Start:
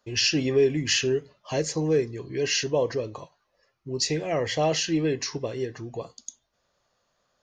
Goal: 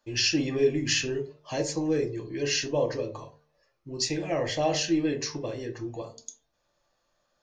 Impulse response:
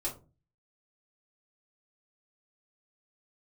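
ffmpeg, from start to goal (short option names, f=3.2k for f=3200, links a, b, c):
-filter_complex "[0:a]bandreject=f=75.58:t=h:w=4,bandreject=f=151.16:t=h:w=4,bandreject=f=226.74:t=h:w=4,bandreject=f=302.32:t=h:w=4,bandreject=f=377.9:t=h:w=4,bandreject=f=453.48:t=h:w=4,bandreject=f=529.06:t=h:w=4,bandreject=f=604.64:t=h:w=4,bandreject=f=680.22:t=h:w=4,bandreject=f=755.8:t=h:w=4,bandreject=f=831.38:t=h:w=4,bandreject=f=906.96:t=h:w=4,bandreject=f=982.54:t=h:w=4,bandreject=f=1.05812k:t=h:w=4,asplit=2[a][b];[1:a]atrim=start_sample=2205,afade=t=out:st=0.21:d=0.01,atrim=end_sample=9702[c];[b][c]afir=irnorm=-1:irlink=0,volume=-3dB[d];[a][d]amix=inputs=2:normalize=0,volume=-6dB"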